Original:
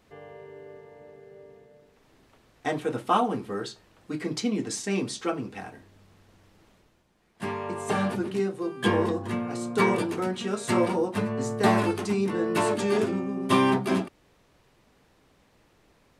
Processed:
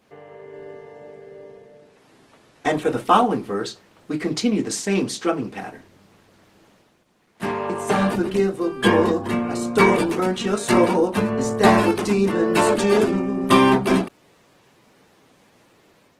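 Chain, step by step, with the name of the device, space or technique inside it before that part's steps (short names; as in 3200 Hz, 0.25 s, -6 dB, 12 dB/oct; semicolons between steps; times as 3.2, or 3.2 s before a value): 5.61–7.7 HPF 78 Hz 12 dB/oct; video call (HPF 130 Hz 12 dB/oct; AGC gain up to 4 dB; gain +3.5 dB; Opus 16 kbps 48000 Hz)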